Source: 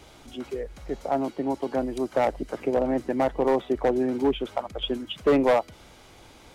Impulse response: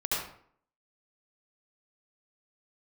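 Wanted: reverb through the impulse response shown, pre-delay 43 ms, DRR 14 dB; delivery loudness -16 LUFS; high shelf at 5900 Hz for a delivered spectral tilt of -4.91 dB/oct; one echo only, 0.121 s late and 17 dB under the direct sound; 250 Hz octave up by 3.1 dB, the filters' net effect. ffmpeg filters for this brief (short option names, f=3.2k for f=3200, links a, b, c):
-filter_complex "[0:a]equalizer=f=250:t=o:g=3.5,highshelf=f=5.9k:g=-8,aecho=1:1:121:0.141,asplit=2[a][b];[1:a]atrim=start_sample=2205,adelay=43[c];[b][c]afir=irnorm=-1:irlink=0,volume=-22dB[d];[a][d]amix=inputs=2:normalize=0,volume=8.5dB"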